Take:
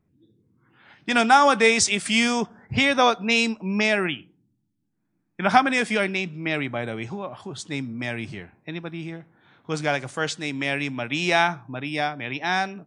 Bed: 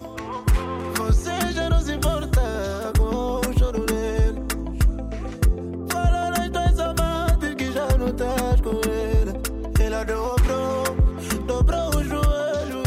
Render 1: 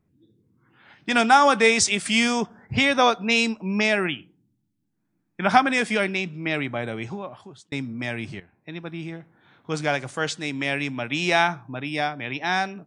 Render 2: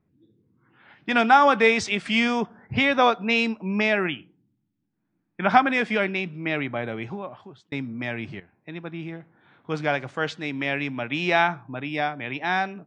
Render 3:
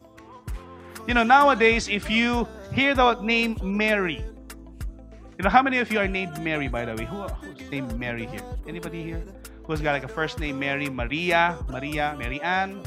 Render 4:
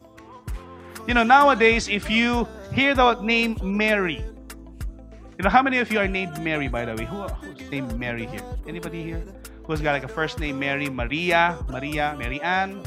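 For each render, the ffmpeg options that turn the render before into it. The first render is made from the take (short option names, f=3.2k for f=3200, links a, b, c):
-filter_complex "[0:a]asplit=3[a][b][c];[a]atrim=end=7.72,asetpts=PTS-STARTPTS,afade=t=out:st=7.13:d=0.59[d];[b]atrim=start=7.72:end=8.4,asetpts=PTS-STARTPTS,afade=t=in:d=0.004:c=hsin,afade=t=out:st=0.676:d=0.004:c=hsin:silence=0.237137[e];[c]atrim=start=8.4,asetpts=PTS-STARTPTS,afade=t=in:d=0.53:silence=0.237137[f];[d][e][f]concat=n=3:v=0:a=1"
-af "lowpass=3.2k,lowshelf=f=68:g=-7"
-filter_complex "[1:a]volume=-15dB[a];[0:a][a]amix=inputs=2:normalize=0"
-af "volume=1.5dB,alimiter=limit=-2dB:level=0:latency=1"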